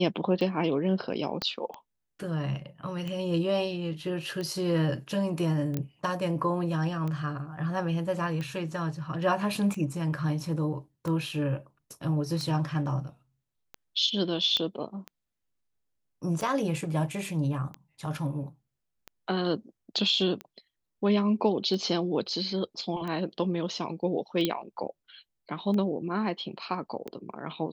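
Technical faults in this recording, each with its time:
tick 45 rpm -23 dBFS
1.42 s: pop -15 dBFS
5.77 s: pop -17 dBFS
14.57 s: pop -15 dBFS
24.45 s: pop -12 dBFS

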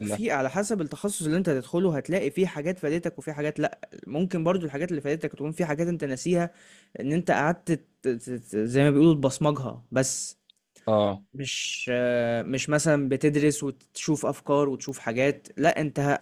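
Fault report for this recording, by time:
14.89 s: pop -25 dBFS

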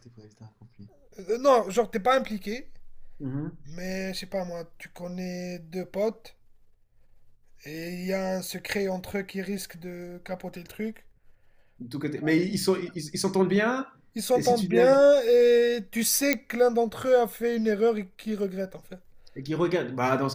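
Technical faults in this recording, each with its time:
16.33 s: pop -7 dBFS

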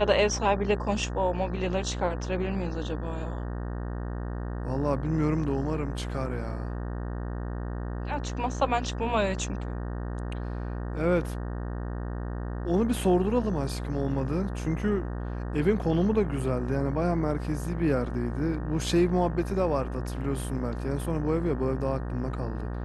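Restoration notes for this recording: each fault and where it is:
buzz 60 Hz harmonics 31 -33 dBFS

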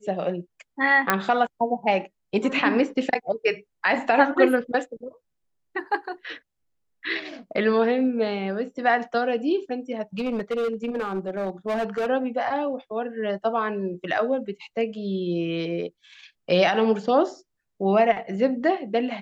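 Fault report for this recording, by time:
1.10 s: pop -4 dBFS
10.18–12.07 s: clipped -22 dBFS

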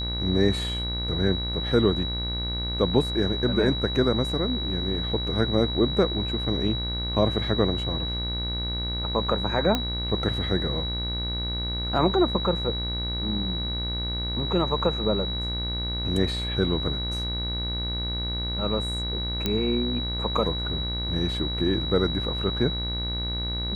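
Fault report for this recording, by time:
buzz 60 Hz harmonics 39 -31 dBFS
whine 3.9 kHz -30 dBFS
9.75 s: pop -10 dBFS
19.46 s: pop -10 dBFS

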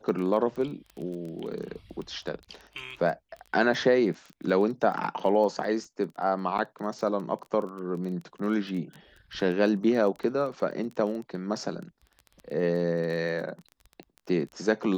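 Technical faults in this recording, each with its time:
crackle 16 per s -35 dBFS
6.58–6.59 s: dropout 7.3 ms

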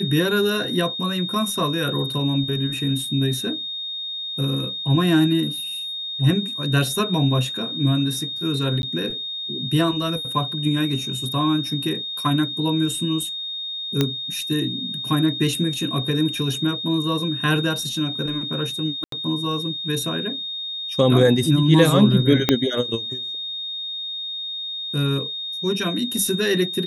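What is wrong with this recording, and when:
whine 3.7 kHz -27 dBFS
8.82–8.83 s: dropout 11 ms
14.01 s: pop -5 dBFS
19.04–19.12 s: dropout 83 ms
22.49 s: pop -1 dBFS

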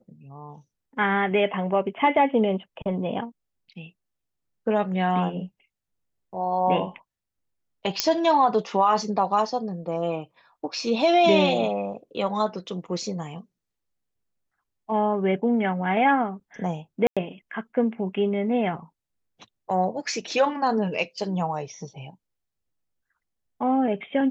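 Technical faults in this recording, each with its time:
8.00 s: pop -4 dBFS
17.07–17.17 s: dropout 96 ms

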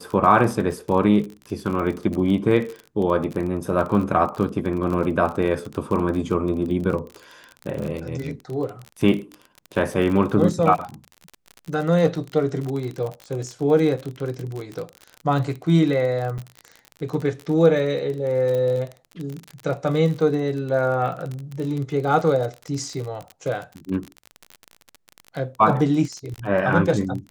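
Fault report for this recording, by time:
crackle 36 per s -27 dBFS
16.38–16.39 s: dropout 5.6 ms
18.55 s: pop -16 dBFS

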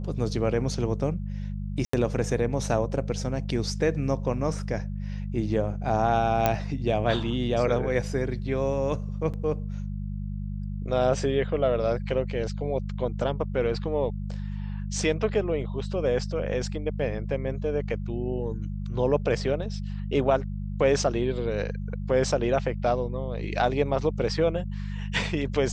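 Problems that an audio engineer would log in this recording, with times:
hum 50 Hz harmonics 4 -32 dBFS
1.85–1.93 s: dropout 84 ms
6.46 s: pop -8 dBFS
9.33–9.34 s: dropout 7.2 ms

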